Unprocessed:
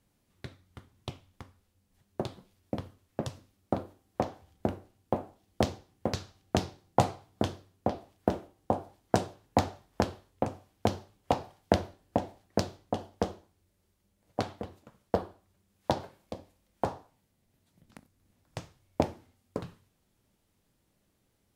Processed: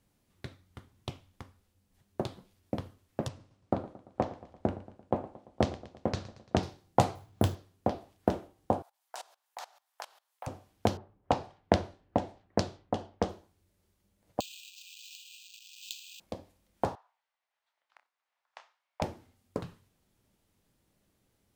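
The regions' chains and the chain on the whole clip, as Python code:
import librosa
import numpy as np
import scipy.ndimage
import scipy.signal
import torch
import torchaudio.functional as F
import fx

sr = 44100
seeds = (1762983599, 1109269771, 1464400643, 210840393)

y = fx.chain(x, sr, fx.lowpass(hz=9600.0, slope=24),
    fx.high_shelf(hz=4300.0, db=-8.5),
    fx.echo_warbled(ms=114, feedback_pct=55, rate_hz=2.8, cents=68, wet_db=-17), at=(3.28, 6.63))
y = fx.chain(y, sr, fx.peak_eq(hz=100.0, db=8.0, octaves=1.1),
    fx.resample_bad(factor=4, down='none', up='hold'), at=(7.15, 7.55))
y = fx.chain(y, sr, fx.highpass(hz=780.0, slope=24),
    fx.level_steps(step_db=21),
    fx.high_shelf(hz=8300.0, db=9.5), at=(8.82, 10.47))
y = fx.chain(y, sr, fx.env_lowpass(base_hz=980.0, full_db=-29.0),
    fx.lowpass(hz=8100.0, slope=12), at=(10.97, 13.29))
y = fx.chain(y, sr, fx.zero_step(step_db=-34.0),
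    fx.brickwall_highpass(low_hz=2400.0),
    fx.resample_bad(factor=4, down='filtered', up='hold'), at=(14.4, 16.2))
y = fx.chain(y, sr, fx.highpass(hz=860.0, slope=24),
    fx.spacing_loss(db_at_10k=25),
    fx.doubler(ms=29.0, db=-10.5), at=(16.95, 19.02))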